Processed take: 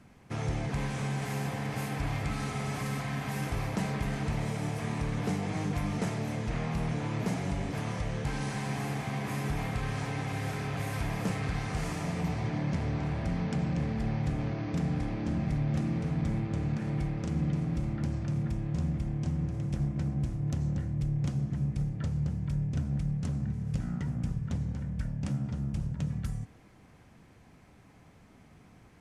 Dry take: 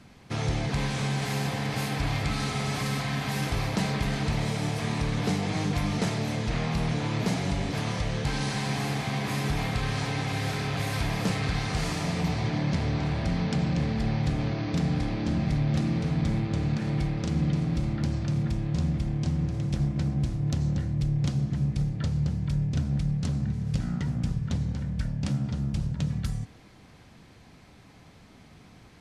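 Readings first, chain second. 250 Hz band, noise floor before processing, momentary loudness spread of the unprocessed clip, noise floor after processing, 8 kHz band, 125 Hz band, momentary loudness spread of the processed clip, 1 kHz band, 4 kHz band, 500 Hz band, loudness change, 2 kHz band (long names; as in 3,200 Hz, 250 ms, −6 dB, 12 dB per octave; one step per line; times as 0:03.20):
−4.0 dB, −52 dBFS, 3 LU, −57 dBFS, −6.5 dB, −4.0 dB, 3 LU, −4.5 dB, −10.5 dB, −4.0 dB, −4.5 dB, −5.5 dB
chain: parametric band 4,100 Hz −8.5 dB 0.94 octaves
level −4 dB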